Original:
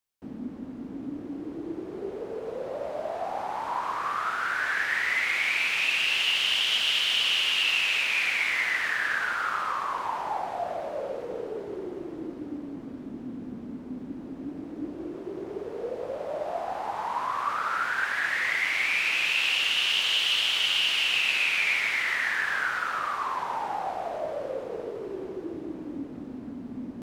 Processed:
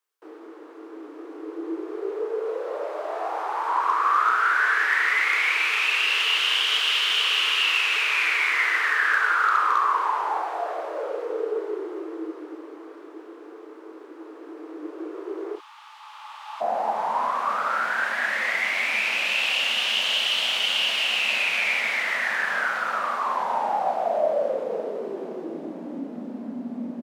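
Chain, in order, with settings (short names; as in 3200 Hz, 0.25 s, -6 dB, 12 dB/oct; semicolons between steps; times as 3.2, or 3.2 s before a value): rippled Chebyshev high-pass 310 Hz, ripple 9 dB, from 15.55 s 830 Hz, from 16.6 s 160 Hz; doubler 33 ms -7 dB; hard clip -21 dBFS, distortion -38 dB; gain +9 dB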